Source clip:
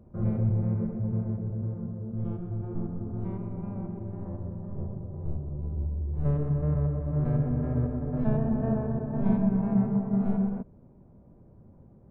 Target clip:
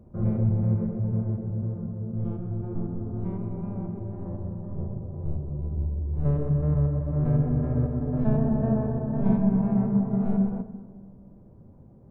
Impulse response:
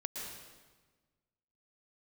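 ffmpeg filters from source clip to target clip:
-filter_complex "[0:a]asplit=2[s0][s1];[s1]lowpass=1300[s2];[1:a]atrim=start_sample=2205,asetrate=41454,aresample=44100[s3];[s2][s3]afir=irnorm=-1:irlink=0,volume=0.398[s4];[s0][s4]amix=inputs=2:normalize=0"

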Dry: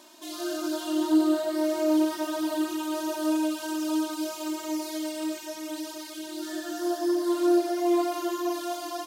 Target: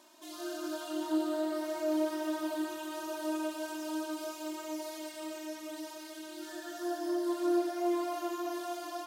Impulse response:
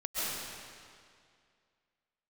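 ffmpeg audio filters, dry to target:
-filter_complex "[0:a]asplit=2[s0][s1];[s1]highpass=440,lowpass=4100[s2];[1:a]atrim=start_sample=2205,lowpass=4600[s3];[s2][s3]afir=irnorm=-1:irlink=0,volume=0.355[s4];[s0][s4]amix=inputs=2:normalize=0,volume=0.398"

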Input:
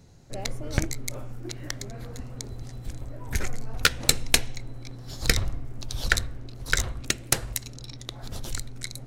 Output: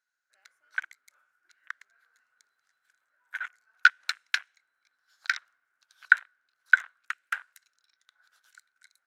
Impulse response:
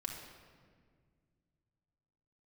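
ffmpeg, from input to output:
-af "highpass=f=1500:t=q:w=12,afwtdn=0.0501,volume=0.299"

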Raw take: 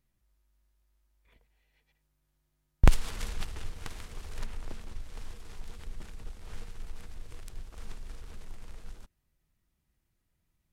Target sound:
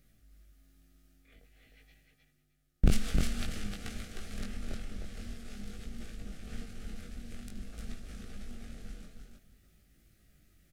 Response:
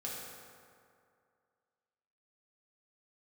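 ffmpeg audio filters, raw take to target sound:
-filter_complex "[0:a]areverse,acompressor=mode=upward:threshold=0.00251:ratio=2.5,areverse,asoftclip=type=hard:threshold=0.211,tremolo=f=220:d=0.4,asplit=2[s0][s1];[s1]aecho=0:1:308|616|924:0.562|0.0956|0.0163[s2];[s0][s2]amix=inputs=2:normalize=0,flanger=delay=18:depth=5.1:speed=0.5,asuperstop=centerf=970:order=4:qfactor=2.3,volume=1.78"

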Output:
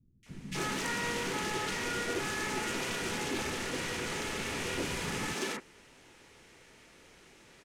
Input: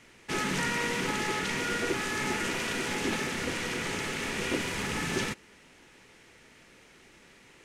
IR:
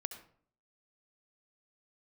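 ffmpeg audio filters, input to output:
-filter_complex "[0:a]asoftclip=type=tanh:threshold=0.0473,acrossover=split=210|2000[s0][s1][s2];[s2]adelay=230[s3];[s1]adelay=260[s4];[s0][s4][s3]amix=inputs=3:normalize=0"

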